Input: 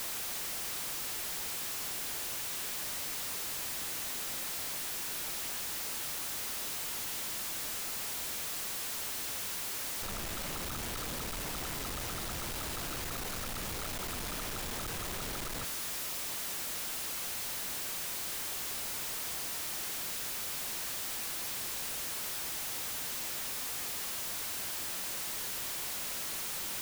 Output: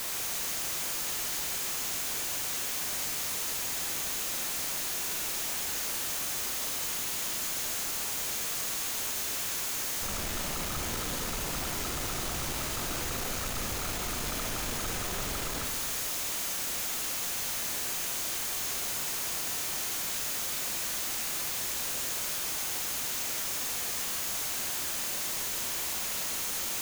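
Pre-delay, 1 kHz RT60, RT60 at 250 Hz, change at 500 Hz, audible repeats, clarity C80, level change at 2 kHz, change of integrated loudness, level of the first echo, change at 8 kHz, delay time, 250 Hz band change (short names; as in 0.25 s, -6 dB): 28 ms, 1.7 s, 1.8 s, +4.5 dB, none, 6.0 dB, +4.0 dB, +4.5 dB, none, +5.5 dB, none, +4.5 dB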